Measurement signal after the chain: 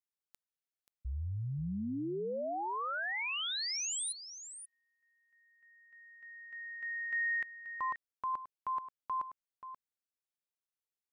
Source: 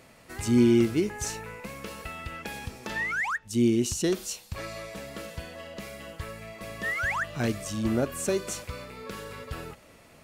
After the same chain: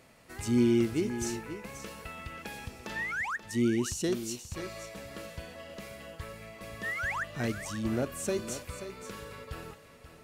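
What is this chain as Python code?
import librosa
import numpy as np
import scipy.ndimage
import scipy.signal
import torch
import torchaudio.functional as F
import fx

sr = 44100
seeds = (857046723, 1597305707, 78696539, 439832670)

y = x + 10.0 ** (-11.5 / 20.0) * np.pad(x, (int(532 * sr / 1000.0), 0))[:len(x)]
y = y * 10.0 ** (-4.5 / 20.0)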